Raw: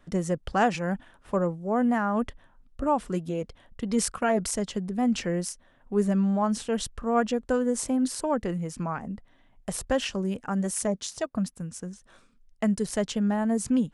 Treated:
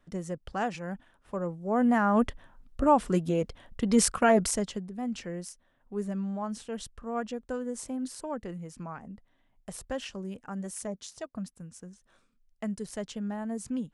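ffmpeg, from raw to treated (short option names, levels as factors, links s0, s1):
-af "volume=1.41,afade=t=in:st=1.38:d=0.82:silence=0.281838,afade=t=out:st=4.33:d=0.56:silence=0.251189"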